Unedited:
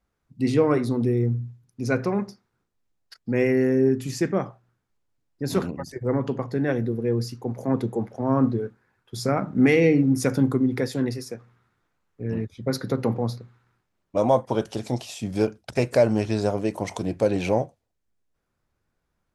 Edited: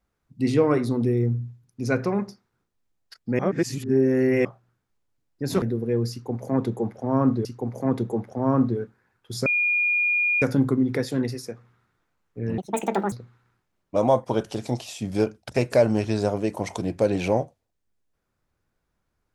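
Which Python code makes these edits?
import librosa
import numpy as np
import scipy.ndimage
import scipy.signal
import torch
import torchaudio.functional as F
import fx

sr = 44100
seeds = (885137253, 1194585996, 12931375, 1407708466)

y = fx.edit(x, sr, fx.reverse_span(start_s=3.39, length_s=1.06),
    fx.cut(start_s=5.62, length_s=1.16),
    fx.repeat(start_s=7.28, length_s=1.33, count=2),
    fx.bleep(start_s=9.29, length_s=0.96, hz=2430.0, db=-19.0),
    fx.speed_span(start_s=12.41, length_s=0.92, speed=1.7), tone=tone)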